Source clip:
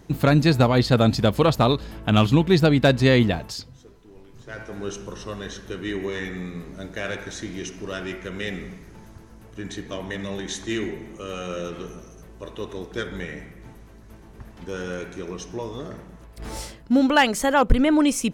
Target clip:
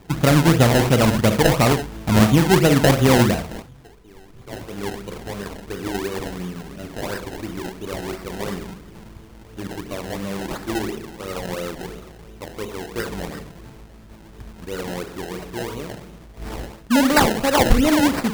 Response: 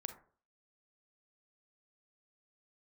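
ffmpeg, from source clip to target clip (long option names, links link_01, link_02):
-filter_complex "[1:a]atrim=start_sample=2205,atrim=end_sample=6174[link_01];[0:a][link_01]afir=irnorm=-1:irlink=0,acrusher=samples=26:mix=1:aa=0.000001:lfo=1:lforange=26:lforate=2.9,volume=5dB"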